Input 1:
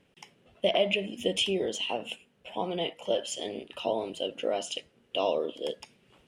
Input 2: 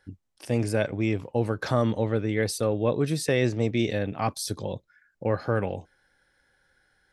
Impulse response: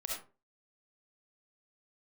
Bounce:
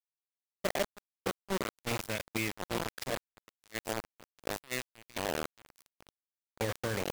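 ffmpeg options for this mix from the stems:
-filter_complex "[0:a]lowpass=1.6k,tiltshelf=f=690:g=7,volume=-9dB,asplit=2[a][b];[1:a]highshelf=f=1.6k:t=q:w=3:g=6.5,bandreject=f=60:t=h:w=6,bandreject=f=120:t=h:w=6,bandreject=f=180:t=h:w=6,bandreject=f=240:t=h:w=6,bandreject=f=300:t=h:w=6,bandreject=f=360:t=h:w=6,bandreject=f=420:t=h:w=6,bandreject=f=480:t=h:w=6,bandreject=f=540:t=h:w=6,bandreject=f=600:t=h:w=6,adelay=1350,volume=5.5dB,afade=t=out:st=3.04:d=0.34:silence=0.398107,afade=t=in:st=5.71:d=0.79:silence=0.237137[c];[b]apad=whole_len=373961[d];[c][d]sidechaincompress=threshold=-40dB:ratio=4:attack=43:release=310[e];[a][e]amix=inputs=2:normalize=0,acrusher=bits=4:mix=0:aa=0.000001,agate=range=-17dB:threshold=-35dB:ratio=16:detection=peak,alimiter=limit=-22dB:level=0:latency=1:release=97"

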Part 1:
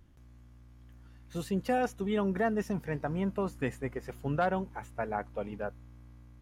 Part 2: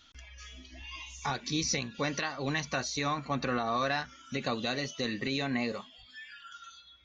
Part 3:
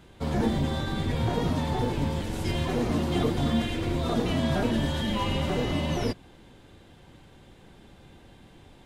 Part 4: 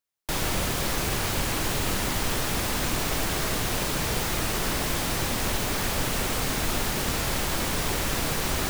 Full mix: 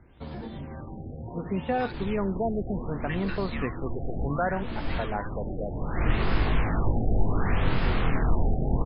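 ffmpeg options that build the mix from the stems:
-filter_complex "[0:a]volume=1.5dB,asplit=2[a][b];[1:a]highpass=f=1.3k:w=0.5412,highpass=f=1.3k:w=1.3066,adelay=550,volume=-2.5dB[c];[2:a]acompressor=threshold=-28dB:ratio=6,volume=-6.5dB[d];[3:a]lowshelf=f=130:g=10.5,bandreject=f=580:w=13,flanger=delay=18:depth=7:speed=0.38,adelay=1650,volume=2.5dB[e];[b]apad=whole_len=456056[f];[e][f]sidechaincompress=threshold=-42dB:ratio=8:attack=22:release=417[g];[a][c][d][g]amix=inputs=4:normalize=0,acrossover=split=3200[h][i];[i]acompressor=threshold=-48dB:ratio=4:attack=1:release=60[j];[h][j]amix=inputs=2:normalize=0,afftfilt=real='re*lt(b*sr/1024,790*pow(5300/790,0.5+0.5*sin(2*PI*0.67*pts/sr)))':imag='im*lt(b*sr/1024,790*pow(5300/790,0.5+0.5*sin(2*PI*0.67*pts/sr)))':win_size=1024:overlap=0.75"

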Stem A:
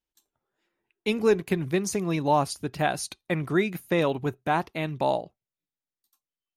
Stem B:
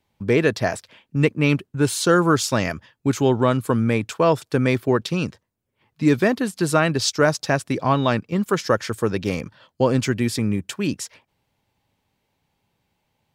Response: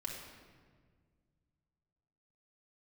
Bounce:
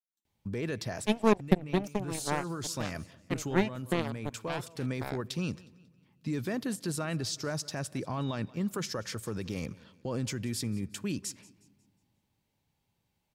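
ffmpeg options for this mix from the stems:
-filter_complex "[0:a]equalizer=f=200:w=1.6:g=12.5,aeval=exprs='0.562*(cos(1*acos(clip(val(0)/0.562,-1,1)))-cos(1*PI/2))+0.158*(cos(3*acos(clip(val(0)/0.562,-1,1)))-cos(3*PI/2))+0.0178*(cos(7*acos(clip(val(0)/0.562,-1,1)))-cos(7*PI/2))':c=same,volume=-2.5dB,asplit=2[a][b];[1:a]bass=f=250:g=5,treble=f=4k:g=6,alimiter=limit=-15dB:level=0:latency=1:release=46,adelay=250,volume=-10.5dB,asplit=3[c][d][e];[d]volume=-22dB[f];[e]volume=-21dB[g];[b]apad=whole_len=599653[h];[c][h]sidechaincompress=threshold=-31dB:ratio=4:attack=50:release=905[i];[2:a]atrim=start_sample=2205[j];[f][j]afir=irnorm=-1:irlink=0[k];[g]aecho=0:1:181|362|543|724|905:1|0.38|0.144|0.0549|0.0209[l];[a][i][k][l]amix=inputs=4:normalize=0"

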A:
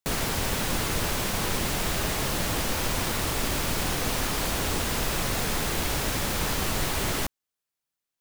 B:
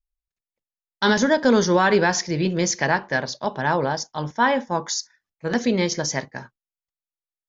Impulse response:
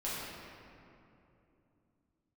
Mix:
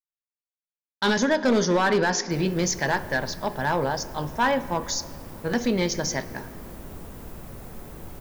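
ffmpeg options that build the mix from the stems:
-filter_complex "[0:a]equalizer=f=4k:w=0.33:g=-15,adelay=2250,volume=-12.5dB,asplit=2[a][b];[b]volume=-10.5dB[c];[1:a]agate=range=-33dB:threshold=-50dB:ratio=3:detection=peak,asoftclip=type=hard:threshold=-13dB,volume=-3dB,asplit=3[d][e][f];[e]volume=-18.5dB[g];[f]apad=whole_len=461274[h];[a][h]sidechaincompress=threshold=-24dB:ratio=8:attack=16:release=147[i];[2:a]atrim=start_sample=2205[j];[c][g]amix=inputs=2:normalize=0[k];[k][j]afir=irnorm=-1:irlink=0[l];[i][d][l]amix=inputs=3:normalize=0"

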